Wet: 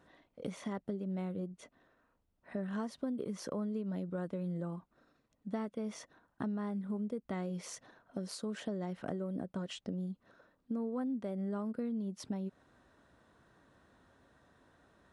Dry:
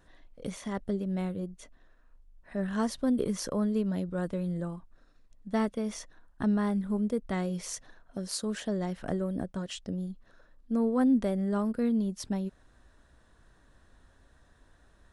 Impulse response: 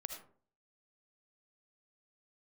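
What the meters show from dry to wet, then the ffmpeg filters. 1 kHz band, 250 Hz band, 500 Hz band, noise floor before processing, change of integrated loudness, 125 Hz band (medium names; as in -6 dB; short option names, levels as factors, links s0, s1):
-8.0 dB, -8.5 dB, -7.5 dB, -62 dBFS, -8.0 dB, -6.5 dB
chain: -af "highpass=130,bandreject=f=1700:w=16,acompressor=threshold=0.0158:ratio=6,highshelf=f=3900:g=-10,volume=1.12"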